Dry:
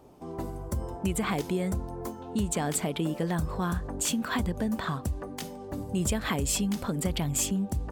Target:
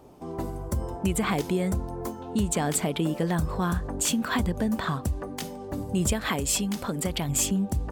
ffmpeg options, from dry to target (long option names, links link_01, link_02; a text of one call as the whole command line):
ffmpeg -i in.wav -filter_complex "[0:a]asettb=1/sr,asplit=3[link_01][link_02][link_03];[link_01]atrim=end=6.134[link_04];[link_02]atrim=start=6.13:end=7.29,asetpts=PTS-STARTPTS,afade=type=in:duration=0.004:curve=qsin,afade=type=out:start_time=1.156:duration=0.004:curve=qsin,lowshelf=frequency=230:gain=-6[link_05];[link_03]atrim=start=7.286[link_06];[link_04][link_05]acrossfade=duration=0.004:curve1=hsin:curve2=qsin[link_07];[link_07][link_06]acrossfade=duration=0.004:curve1=qsin:curve2=hsin,volume=3dB" out.wav